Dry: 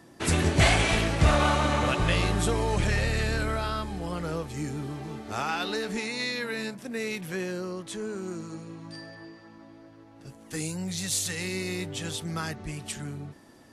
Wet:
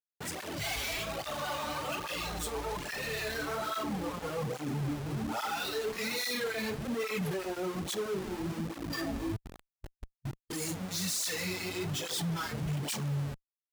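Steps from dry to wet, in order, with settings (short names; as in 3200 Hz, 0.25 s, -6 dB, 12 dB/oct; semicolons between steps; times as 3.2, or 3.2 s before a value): dynamic EQ 5100 Hz, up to +4 dB, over -49 dBFS, Q 3; reverse echo 59 ms -21.5 dB; AGC gain up to 10.5 dB; tone controls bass -4 dB, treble +2 dB; on a send at -9.5 dB: reverb, pre-delay 6 ms; on the sum: Schmitt trigger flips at -30.5 dBFS; spectral noise reduction 7 dB; tape flanging out of phase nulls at 1.2 Hz, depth 6.5 ms; gain -8.5 dB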